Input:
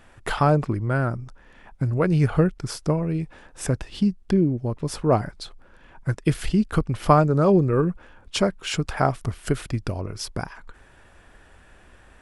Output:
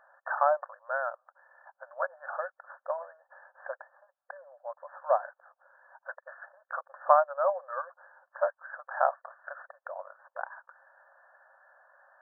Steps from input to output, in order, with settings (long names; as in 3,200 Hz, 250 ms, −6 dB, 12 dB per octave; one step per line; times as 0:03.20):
linear-phase brick-wall band-pass 520–1,800 Hz
level −3 dB